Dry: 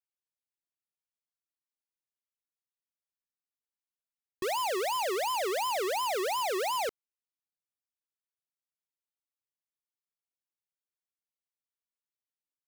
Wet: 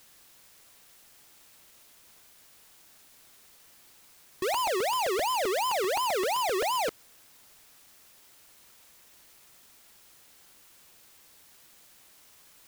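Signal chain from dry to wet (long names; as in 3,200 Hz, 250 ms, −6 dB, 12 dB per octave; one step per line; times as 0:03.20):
in parallel at −9 dB: bit-depth reduction 8 bits, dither triangular
on the sum: regular buffer underruns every 0.13 s, samples 128, repeat, from 0:00.51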